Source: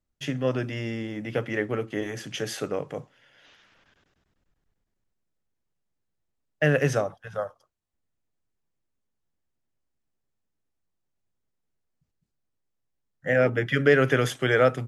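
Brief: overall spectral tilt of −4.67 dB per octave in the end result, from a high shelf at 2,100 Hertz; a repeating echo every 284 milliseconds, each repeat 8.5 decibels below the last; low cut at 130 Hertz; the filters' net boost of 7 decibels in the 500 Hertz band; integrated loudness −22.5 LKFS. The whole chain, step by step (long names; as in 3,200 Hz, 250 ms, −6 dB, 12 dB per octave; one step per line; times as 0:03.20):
high-pass filter 130 Hz
parametric band 500 Hz +7.5 dB
high-shelf EQ 2,100 Hz +7.5 dB
repeating echo 284 ms, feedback 38%, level −8.5 dB
level −2 dB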